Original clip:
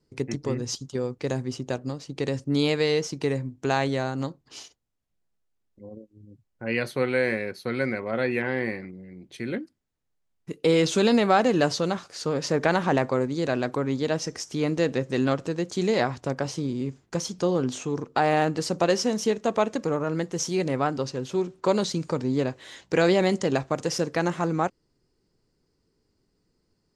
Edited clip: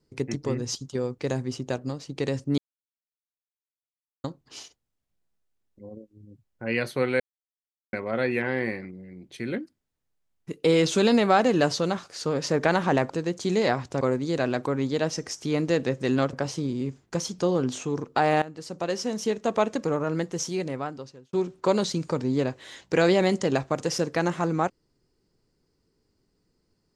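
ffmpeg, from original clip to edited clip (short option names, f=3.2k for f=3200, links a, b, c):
-filter_complex "[0:a]asplit=10[a][b][c][d][e][f][g][h][i][j];[a]atrim=end=2.58,asetpts=PTS-STARTPTS,afade=t=out:st=2.576:d=0.004:c=hsin[k];[b]atrim=start=2.58:end=4.24,asetpts=PTS-STARTPTS,volume=0[l];[c]atrim=start=4.24:end=7.2,asetpts=PTS-STARTPTS,afade=t=in:d=0.004:c=hsin,afade=t=out:st=2.956:d=0.004:c=hsin[m];[d]atrim=start=7.2:end=7.93,asetpts=PTS-STARTPTS,volume=0[n];[e]atrim=start=7.93:end=13.102,asetpts=PTS-STARTPTS,afade=t=in:d=0.004:c=hsin[o];[f]atrim=start=15.418:end=16.332[p];[g]atrim=start=13.098:end=15.422[q];[h]atrim=start=16.328:end=18.42,asetpts=PTS-STARTPTS,afade=t=out:st=2.088:d=0.004:c=hsin:silence=0.133352[r];[i]atrim=start=18.42:end=21.33,asetpts=PTS-STARTPTS,afade=t=in:d=1.19:silence=0.133352,afade=t=out:st=1.79:d=1.12[s];[j]atrim=start=21.33,asetpts=PTS-STARTPTS,afade=t=in:d=0.004:c=hsin[t];[k][l][m][n][o]concat=n=5:v=0:a=1[u];[u][p]acrossfade=d=0.004:c1=hsin:c2=hsin[v];[v][q]acrossfade=d=0.004:c1=hsin:c2=hsin[w];[r][s][t]concat=n=3:v=0:a=1[x];[w][x]acrossfade=d=0.004:c1=hsin:c2=hsin"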